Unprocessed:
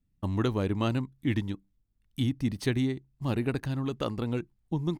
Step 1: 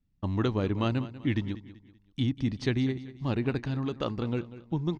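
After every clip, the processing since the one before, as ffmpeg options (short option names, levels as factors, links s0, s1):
-af "lowpass=f=5900:w=0.5412,lowpass=f=5900:w=1.3066,aecho=1:1:192|384|576:0.168|0.0621|0.023"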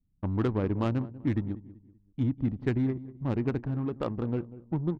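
-af "adynamicsmooth=sensitivity=2:basefreq=560,aemphasis=mode=reproduction:type=cd"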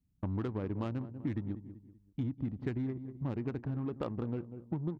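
-af "highpass=42,acompressor=threshold=0.0251:ratio=6"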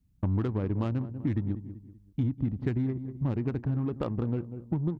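-af "lowshelf=f=150:g=7.5,volume=1.5"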